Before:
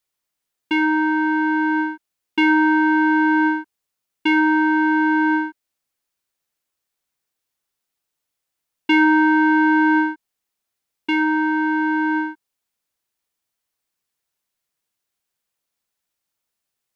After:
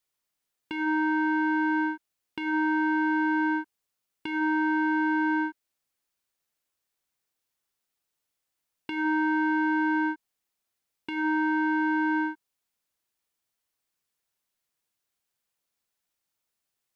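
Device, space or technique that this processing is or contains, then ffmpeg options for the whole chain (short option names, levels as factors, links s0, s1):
de-esser from a sidechain: -filter_complex "[0:a]asplit=2[s0][s1];[s1]highpass=4100,apad=whole_len=747913[s2];[s0][s2]sidechaincompress=threshold=0.00794:ratio=16:attack=3.3:release=67,volume=0.75"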